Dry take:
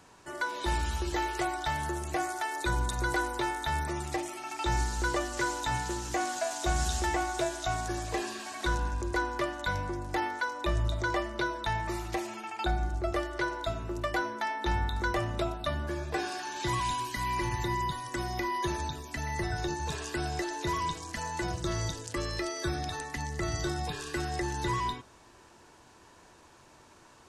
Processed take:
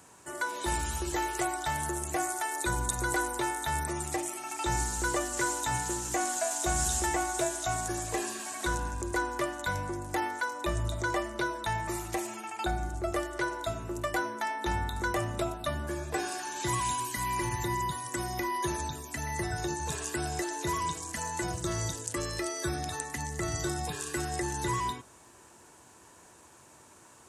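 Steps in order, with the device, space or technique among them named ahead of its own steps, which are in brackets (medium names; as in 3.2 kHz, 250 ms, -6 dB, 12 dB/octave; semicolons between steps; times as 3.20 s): budget condenser microphone (high-pass 65 Hz; resonant high shelf 6.2 kHz +8 dB, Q 1.5)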